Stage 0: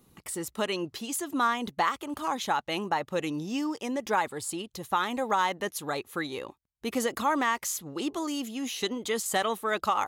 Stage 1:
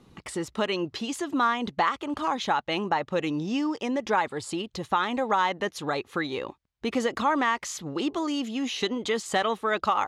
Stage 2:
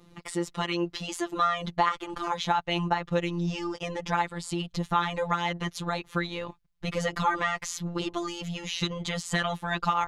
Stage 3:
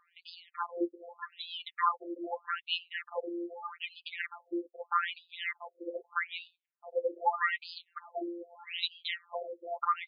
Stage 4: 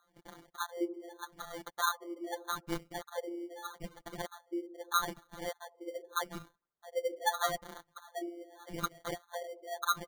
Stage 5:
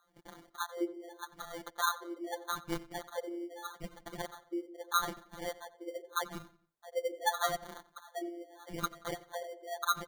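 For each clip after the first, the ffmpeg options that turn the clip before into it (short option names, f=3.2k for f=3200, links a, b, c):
-filter_complex "[0:a]lowpass=4.8k,asplit=2[a][b];[b]acompressor=threshold=-36dB:ratio=6,volume=1.5dB[c];[a][c]amix=inputs=2:normalize=0"
-af "afftfilt=real='hypot(re,im)*cos(PI*b)':imag='0':win_size=1024:overlap=0.75,asubboost=boost=8:cutoff=110,volume=3dB"
-af "afftfilt=real='re*between(b*sr/1024,410*pow(3600/410,0.5+0.5*sin(2*PI*0.81*pts/sr))/1.41,410*pow(3600/410,0.5+0.5*sin(2*PI*0.81*pts/sr))*1.41)':imag='im*between(b*sr/1024,410*pow(3600/410,0.5+0.5*sin(2*PI*0.81*pts/sr))/1.41,410*pow(3600/410,0.5+0.5*sin(2*PI*0.81*pts/sr))*1.41)':win_size=1024:overlap=0.75"
-filter_complex "[0:a]acrossover=split=600[a][b];[a]aecho=1:1:77|154|231|308|385|462|539:0.316|0.183|0.106|0.0617|0.0358|0.0208|0.012[c];[b]acrusher=samples=17:mix=1:aa=0.000001[d];[c][d]amix=inputs=2:normalize=0,volume=-2dB"
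-filter_complex "[0:a]asplit=2[a][b];[b]adelay=90,lowpass=f=4.6k:p=1,volume=-18dB,asplit=2[c][d];[d]adelay=90,lowpass=f=4.6k:p=1,volume=0.4,asplit=2[e][f];[f]adelay=90,lowpass=f=4.6k:p=1,volume=0.4[g];[a][c][e][g]amix=inputs=4:normalize=0"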